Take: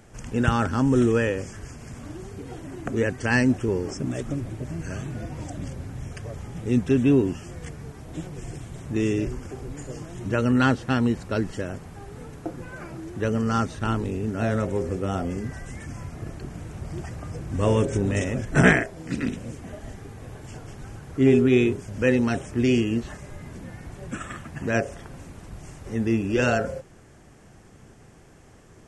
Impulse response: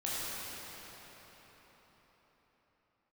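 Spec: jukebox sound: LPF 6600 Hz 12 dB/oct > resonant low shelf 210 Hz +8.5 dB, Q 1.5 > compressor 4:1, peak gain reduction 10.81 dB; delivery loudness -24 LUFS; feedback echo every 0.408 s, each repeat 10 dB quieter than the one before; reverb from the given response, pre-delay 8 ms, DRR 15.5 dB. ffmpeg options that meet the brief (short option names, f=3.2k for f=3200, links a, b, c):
-filter_complex "[0:a]aecho=1:1:408|816|1224|1632:0.316|0.101|0.0324|0.0104,asplit=2[a][b];[1:a]atrim=start_sample=2205,adelay=8[c];[b][c]afir=irnorm=-1:irlink=0,volume=-22dB[d];[a][d]amix=inputs=2:normalize=0,lowpass=6.6k,lowshelf=f=210:t=q:w=1.5:g=8.5,acompressor=threshold=-17dB:ratio=4,volume=0.5dB"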